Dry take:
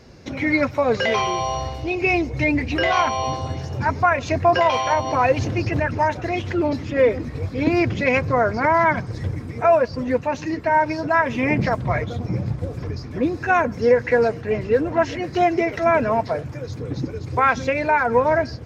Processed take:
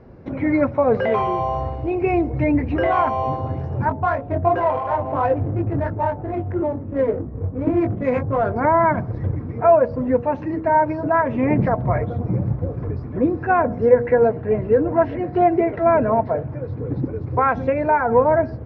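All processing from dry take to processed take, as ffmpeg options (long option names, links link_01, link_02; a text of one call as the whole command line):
ffmpeg -i in.wav -filter_complex "[0:a]asettb=1/sr,asplit=3[link_01][link_02][link_03];[link_01]atrim=end=3.894[link_04];[link_02]atrim=start=3.89:end=8.56,asetpts=PTS-STARTPTS,afade=type=in:duration=0.004:curve=qsin,afade=type=out:start_time=4.666:duration=0.004:curve=qsin,bandreject=frequency=232.7:width_type=h:width=4,bandreject=frequency=465.4:width_type=h:width=4,bandreject=frequency=698.1:width_type=h:width=4,flanger=delay=18:depth=3.5:speed=2.9,adynamicsmooth=sensitivity=2:basefreq=590[link_05];[link_03]atrim=start=8.556[link_06];[link_04][link_05]acrossfade=duration=0.004:curve1=hsin:curve2=qsin[link_07];[link_07][link_06]acrossfade=duration=0.004:curve1=qsin:curve2=hsin,asettb=1/sr,asplit=3[link_08][link_09][link_10];[link_08]atrim=end=13.894[link_11];[link_09]atrim=start=13.89:end=17.05,asetpts=PTS-STARTPTS,afade=type=in:duration=0.004:curve=qsin,afade=type=out:start_time=3.156:duration=0.004:curve=qsin,lowpass=frequency=5100:width=0.5412,lowpass=frequency=5100:width=1.3066,bandreject=frequency=1200:width=22[link_12];[link_10]atrim=start=17.046[link_13];[link_11][link_12]acrossfade=duration=0.004:curve1=hsin:curve2=qsin[link_14];[link_14][link_13]acrossfade=duration=0.004:curve1=qsin:curve2=hsin,lowpass=1100,bandreject=frequency=79.78:width_type=h:width=4,bandreject=frequency=159.56:width_type=h:width=4,bandreject=frequency=239.34:width_type=h:width=4,bandreject=frequency=319.12:width_type=h:width=4,bandreject=frequency=398.9:width_type=h:width=4,bandreject=frequency=478.68:width_type=h:width=4,bandreject=frequency=558.46:width_type=h:width=4,bandreject=frequency=638.24:width_type=h:width=4,bandreject=frequency=718.02:width_type=h:width=4,bandreject=frequency=797.8:width_type=h:width=4,bandreject=frequency=877.58:width_type=h:width=4,volume=3dB" out.wav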